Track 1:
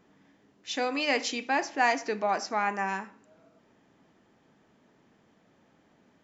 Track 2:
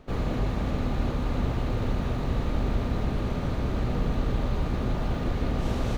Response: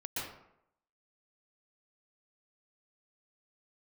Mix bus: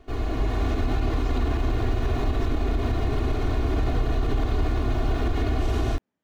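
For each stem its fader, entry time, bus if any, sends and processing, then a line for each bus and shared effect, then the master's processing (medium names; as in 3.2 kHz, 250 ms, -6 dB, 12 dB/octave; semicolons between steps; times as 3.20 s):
-19.0 dB, 0.00 s, no send, none
-5.5 dB, 0.00 s, send -6 dB, comb 2.8 ms, depth 98%; level rider gain up to 5.5 dB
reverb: on, RT60 0.75 s, pre-delay 113 ms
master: peak limiter -15.5 dBFS, peak gain reduction 8 dB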